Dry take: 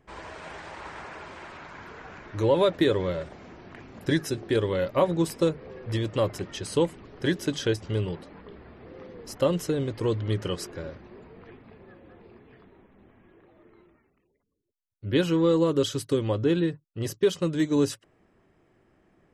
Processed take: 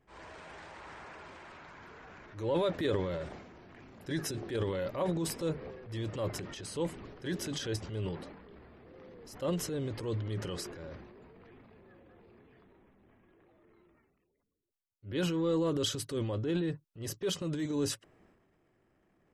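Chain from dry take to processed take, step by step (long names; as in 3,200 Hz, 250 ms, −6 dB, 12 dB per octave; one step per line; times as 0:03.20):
transient designer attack −7 dB, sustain +8 dB
level −8 dB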